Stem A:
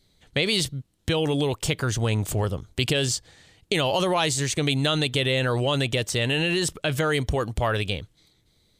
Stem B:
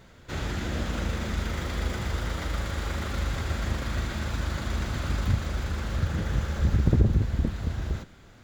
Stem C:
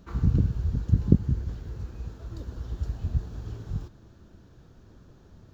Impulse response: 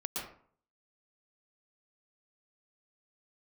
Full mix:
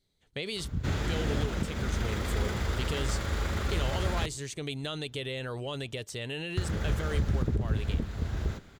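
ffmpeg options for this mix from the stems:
-filter_complex "[0:a]volume=-13dB[a];[1:a]adelay=550,volume=-1dB,asplit=3[b][c][d];[b]atrim=end=4.26,asetpts=PTS-STARTPTS,afade=t=out:st=4.256:d=0.004:c=hsin[e];[c]atrim=start=4.26:end=6.57,asetpts=PTS-STARTPTS,volume=0[f];[d]atrim=start=6.57,asetpts=PTS-STARTPTS,afade=t=in:d=0.004:c=hsin[g];[e][f][g]concat=n=3:v=0:a=1[h];[2:a]adelay=500,volume=-10.5dB[i];[a][h][i]amix=inputs=3:normalize=0,equalizer=f=420:w=7.9:g=5,alimiter=limit=-18dB:level=0:latency=1:release=413"

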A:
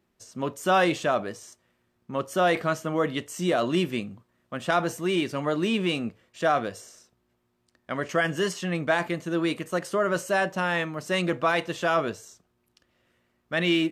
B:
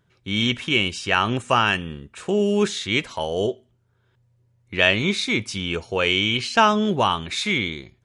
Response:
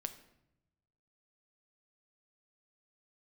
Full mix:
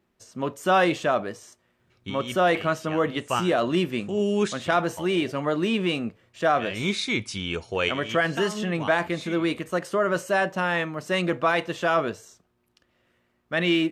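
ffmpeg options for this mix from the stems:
-filter_complex "[0:a]bass=f=250:g=-1,treble=f=4k:g=-4,volume=1.5dB,asplit=2[a][b];[1:a]adelay=1800,volume=-3.5dB[c];[b]apad=whole_len=438421[d];[c][d]sidechaincompress=threshold=-40dB:ratio=8:attack=16:release=140[e];[a][e]amix=inputs=2:normalize=0"

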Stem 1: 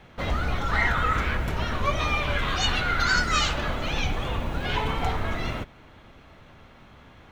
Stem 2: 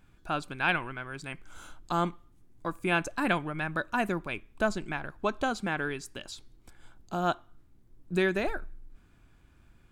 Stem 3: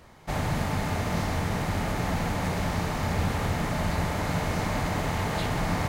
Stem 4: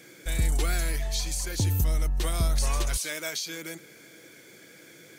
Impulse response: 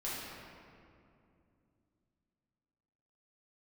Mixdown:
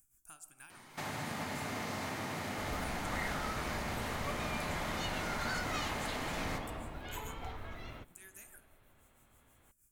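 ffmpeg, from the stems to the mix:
-filter_complex "[0:a]adelay=2400,volume=-17dB[a];[1:a]acrossover=split=950|4200[b][c][d];[b]acompressor=threshold=-43dB:ratio=4[e];[c]acompressor=threshold=-38dB:ratio=4[f];[d]acompressor=threshold=-55dB:ratio=4[g];[e][f][g]amix=inputs=3:normalize=0,tremolo=f=6.3:d=0.7,aexciter=amount=13.2:drive=9.9:freq=6.3k,volume=-17dB,asplit=2[h][i];[i]volume=-14dB[j];[2:a]highpass=200,adelay=700,volume=0.5dB,asplit=2[k][l];[l]volume=-16dB[m];[h][k]amix=inputs=2:normalize=0,equalizer=f=540:t=o:w=1.2:g=-11.5,acompressor=threshold=-40dB:ratio=6,volume=0dB[n];[4:a]atrim=start_sample=2205[o];[j][m]amix=inputs=2:normalize=0[p];[p][o]afir=irnorm=-1:irlink=0[q];[a][n][q]amix=inputs=3:normalize=0,equalizer=f=180:t=o:w=0.23:g=-8.5"

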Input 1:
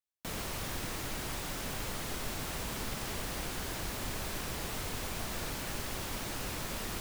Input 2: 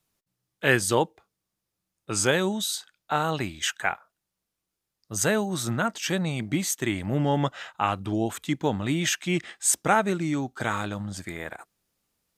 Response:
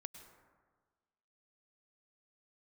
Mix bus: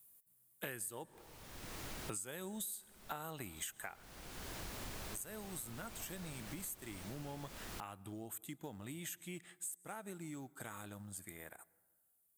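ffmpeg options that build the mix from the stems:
-filter_complex "[0:a]adelay=800,volume=-7dB[a];[1:a]aexciter=amount=11.2:drive=3.8:freq=8k,acompressor=threshold=-28dB:ratio=2,acrusher=bits=7:mode=log:mix=0:aa=0.000001,volume=-5.5dB,afade=t=out:st=3.56:d=0.6:silence=0.237137,asplit=3[b][c][d];[c]volume=-9.5dB[e];[d]apad=whole_len=344122[f];[a][f]sidechaincompress=threshold=-50dB:ratio=16:attack=43:release=570[g];[2:a]atrim=start_sample=2205[h];[e][h]afir=irnorm=-1:irlink=0[i];[g][b][i]amix=inputs=3:normalize=0,acompressor=threshold=-41dB:ratio=10"

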